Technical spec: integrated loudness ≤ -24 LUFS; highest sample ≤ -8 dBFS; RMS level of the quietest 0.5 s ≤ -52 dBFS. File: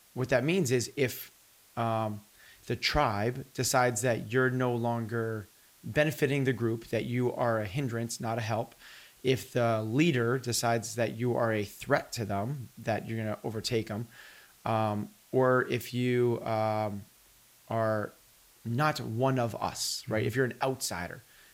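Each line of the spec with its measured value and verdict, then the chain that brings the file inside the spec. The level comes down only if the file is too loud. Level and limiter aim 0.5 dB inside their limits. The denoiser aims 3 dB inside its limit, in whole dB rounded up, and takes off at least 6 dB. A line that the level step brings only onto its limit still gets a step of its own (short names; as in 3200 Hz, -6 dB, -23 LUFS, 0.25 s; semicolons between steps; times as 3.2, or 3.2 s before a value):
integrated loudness -30.5 LUFS: OK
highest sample -12.0 dBFS: OK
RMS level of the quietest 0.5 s -60 dBFS: OK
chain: none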